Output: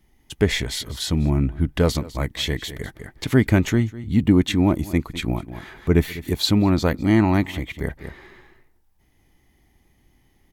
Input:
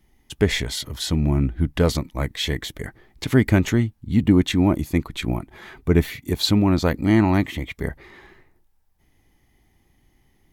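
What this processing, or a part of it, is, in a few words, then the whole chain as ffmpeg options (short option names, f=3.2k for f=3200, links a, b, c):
ducked delay: -filter_complex "[0:a]asplit=3[a][b][c];[b]adelay=201,volume=-5dB[d];[c]apad=whole_len=473180[e];[d][e]sidechaincompress=threshold=-37dB:ratio=8:attack=16:release=208[f];[a][f]amix=inputs=2:normalize=0"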